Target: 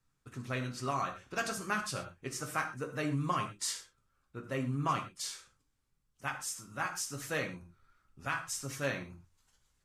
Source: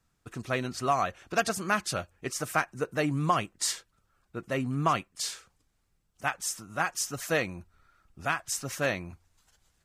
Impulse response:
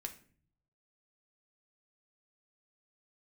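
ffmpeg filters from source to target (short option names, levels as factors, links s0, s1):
-filter_complex "[0:a]equalizer=f=690:w=5:g=-6.5[s0];[1:a]atrim=start_sample=2205,atrim=end_sample=3528,asetrate=26019,aresample=44100[s1];[s0][s1]afir=irnorm=-1:irlink=0,volume=0.501"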